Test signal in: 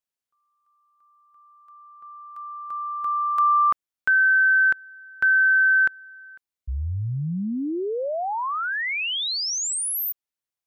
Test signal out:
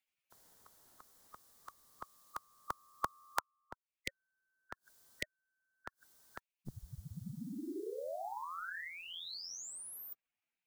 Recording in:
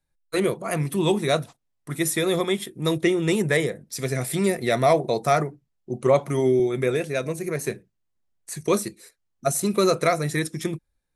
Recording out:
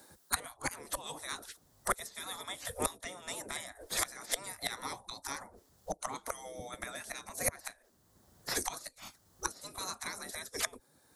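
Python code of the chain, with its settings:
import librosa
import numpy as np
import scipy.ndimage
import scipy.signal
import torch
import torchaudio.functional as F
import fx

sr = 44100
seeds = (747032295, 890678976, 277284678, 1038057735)

y = fx.gate_flip(x, sr, shuts_db=-18.0, range_db=-25)
y = fx.peak_eq(y, sr, hz=2500.0, db=-13.0, octaves=0.86)
y = fx.spec_gate(y, sr, threshold_db=-20, keep='weak')
y = fx.band_squash(y, sr, depth_pct=40)
y = y * 10.0 ** (18.0 / 20.0)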